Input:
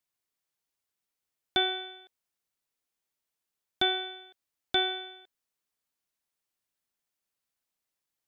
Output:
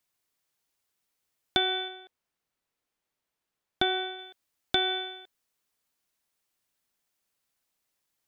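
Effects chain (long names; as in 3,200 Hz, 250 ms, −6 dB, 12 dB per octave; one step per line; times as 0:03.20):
0:01.88–0:04.19: high-shelf EQ 4,000 Hz −9.5 dB
downward compressor, threshold −28 dBFS, peak gain reduction 6.5 dB
level +6 dB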